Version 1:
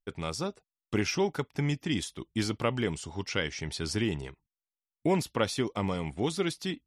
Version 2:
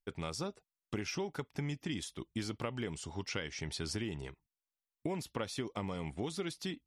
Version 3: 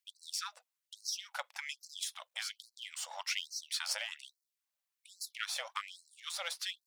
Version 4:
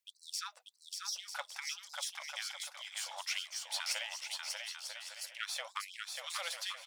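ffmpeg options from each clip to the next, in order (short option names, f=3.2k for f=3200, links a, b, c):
-af "acompressor=threshold=-31dB:ratio=6,volume=-3dB"
-af "aeval=exprs='if(lt(val(0),0),0.447*val(0),val(0))':c=same,afftfilt=real='re*gte(b*sr/1024,480*pow(4100/480,0.5+0.5*sin(2*PI*1.2*pts/sr)))':imag='im*gte(b*sr/1024,480*pow(4100/480,0.5+0.5*sin(2*PI*1.2*pts/sr)))':win_size=1024:overlap=0.75,volume=8.5dB"
-af "aecho=1:1:590|944|1156|1284|1360:0.631|0.398|0.251|0.158|0.1,volume=-1.5dB"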